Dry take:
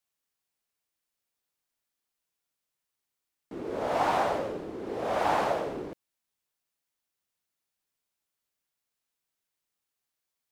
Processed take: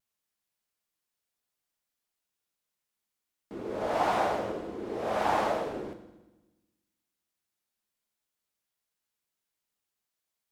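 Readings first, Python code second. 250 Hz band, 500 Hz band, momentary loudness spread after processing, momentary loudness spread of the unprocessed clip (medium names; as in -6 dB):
0.0 dB, -1.0 dB, 15 LU, 13 LU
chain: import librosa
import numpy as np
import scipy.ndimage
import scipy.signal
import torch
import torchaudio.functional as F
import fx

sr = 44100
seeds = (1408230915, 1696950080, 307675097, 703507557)

y = fx.vibrato(x, sr, rate_hz=0.44, depth_cents=12.0)
y = fx.rev_fdn(y, sr, rt60_s=1.1, lf_ratio=1.3, hf_ratio=0.95, size_ms=28.0, drr_db=7.5)
y = F.gain(torch.from_numpy(y), -1.5).numpy()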